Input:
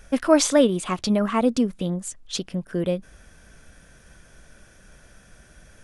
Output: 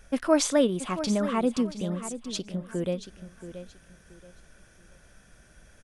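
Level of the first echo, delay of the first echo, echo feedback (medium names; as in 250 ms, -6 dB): -12.0 dB, 678 ms, 27%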